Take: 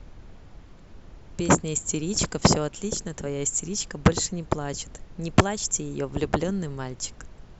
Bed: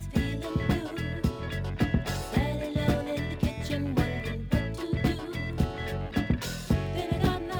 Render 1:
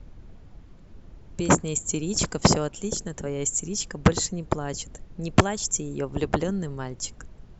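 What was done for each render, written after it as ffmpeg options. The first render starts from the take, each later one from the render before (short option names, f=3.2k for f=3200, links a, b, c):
-af "afftdn=nr=6:nf=-48"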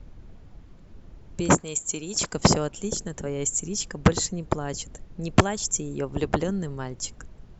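-filter_complex "[0:a]asettb=1/sr,asplit=3[a][b][c];[a]atrim=end=1.574[d];[b]atrim=start=1.57:end=2.33,asetpts=PTS-STARTPTS,afade=t=in:d=0.004:c=qsin,afade=t=out:st=0.756:d=0.004:c=qsin,lowshelf=f=330:g=-11.5[e];[c]atrim=start=2.326[f];[d][e]acrossfade=d=0.004:c1=hsin:c2=qsin[g];[g][f]acrossfade=d=0.004:c1=qsin:c2=hsin"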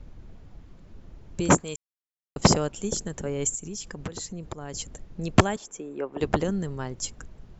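-filter_complex "[0:a]asettb=1/sr,asplit=3[a][b][c];[a]atrim=end=3.554[d];[b]atrim=start=3.55:end=4.75,asetpts=PTS-STARTPTS,afade=t=in:d=0.004:c=qsin,afade=t=out:st=1.196:d=0.004:c=qsin,acompressor=threshold=-33dB:ratio=4:attack=3.2:release=140:knee=1:detection=peak[e];[c]atrim=start=4.746[f];[d][e]acrossfade=d=0.004:c1=hsin:c2=qsin[g];[g][f]acrossfade=d=0.004:c1=qsin:c2=hsin,asettb=1/sr,asplit=3[h][i][j];[h]atrim=end=5.564[k];[i]atrim=start=5.56:end=6.21,asetpts=PTS-STARTPTS,afade=t=in:d=0.004:c=qsin,afade=t=out:st=0.646:d=0.004:c=qsin,acrossover=split=260 2600:gain=0.0631 1 0.141[l][m][n];[l][m][n]amix=inputs=3:normalize=0[o];[j]atrim=start=6.206[p];[k][o]acrossfade=d=0.004:c1=hsin:c2=qsin[q];[q][p]acrossfade=d=0.004:c1=qsin:c2=hsin,asplit=3[r][s][t];[r]atrim=end=1.76,asetpts=PTS-STARTPTS,afade=t=out:st=1.756:d=0.004:c=hsin[u];[s]atrim=start=1.76:end=2.36,asetpts=PTS-STARTPTS,volume=0[v];[t]atrim=start=2.36,asetpts=PTS-STARTPTS,afade=t=in:d=0.004:c=hsin[w];[u][v][w]concat=n=3:v=0:a=1"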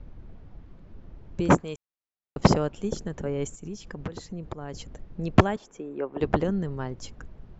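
-af "lowpass=f=6.8k:w=0.5412,lowpass=f=6.8k:w=1.3066,aemphasis=mode=reproduction:type=75fm"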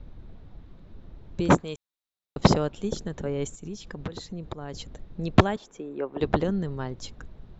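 -af "equalizer=f=3.8k:t=o:w=0.34:g=9"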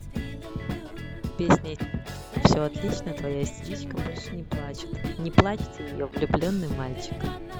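-filter_complex "[1:a]volume=-5.5dB[a];[0:a][a]amix=inputs=2:normalize=0"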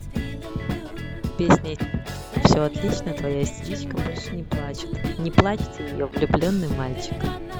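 -af "volume=4.5dB,alimiter=limit=-3dB:level=0:latency=1"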